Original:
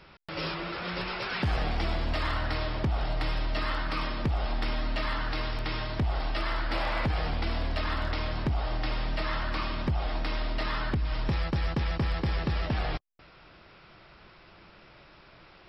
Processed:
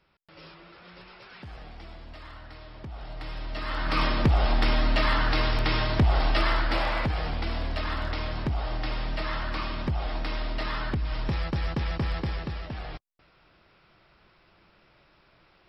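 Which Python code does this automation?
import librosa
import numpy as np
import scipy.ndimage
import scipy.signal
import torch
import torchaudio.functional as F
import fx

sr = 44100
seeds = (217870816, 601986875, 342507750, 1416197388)

y = fx.gain(x, sr, db=fx.line((2.61, -15.0), (3.64, -3.0), (4.0, 7.0), (6.41, 7.0), (7.16, 0.0), (12.17, 0.0), (12.66, -7.0)))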